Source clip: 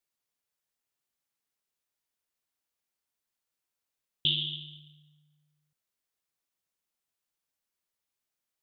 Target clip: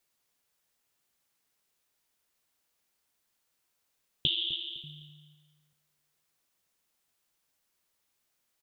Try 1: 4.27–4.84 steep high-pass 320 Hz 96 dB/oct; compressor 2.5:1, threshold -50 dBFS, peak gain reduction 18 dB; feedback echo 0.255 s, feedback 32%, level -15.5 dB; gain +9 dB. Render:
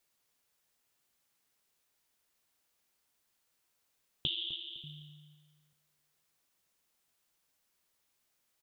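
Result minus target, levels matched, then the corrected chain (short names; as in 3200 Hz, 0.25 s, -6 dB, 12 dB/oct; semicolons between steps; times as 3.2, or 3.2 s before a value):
compressor: peak gain reduction +6 dB
4.27–4.84 steep high-pass 320 Hz 96 dB/oct; compressor 2.5:1, threshold -40 dBFS, peak gain reduction 12 dB; feedback echo 0.255 s, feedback 32%, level -15.5 dB; gain +9 dB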